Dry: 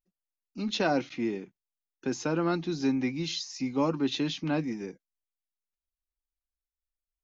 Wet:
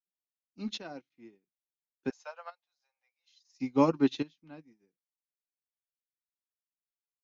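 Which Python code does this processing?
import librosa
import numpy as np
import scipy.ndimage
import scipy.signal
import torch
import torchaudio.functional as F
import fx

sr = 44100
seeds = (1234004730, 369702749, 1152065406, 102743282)

y = fx.steep_highpass(x, sr, hz=540.0, slope=72, at=(2.1, 3.54))
y = fx.chopper(y, sr, hz=0.58, depth_pct=60, duty_pct=45)
y = fx.upward_expand(y, sr, threshold_db=-48.0, expansion=2.5)
y = y * librosa.db_to_amplitude(4.5)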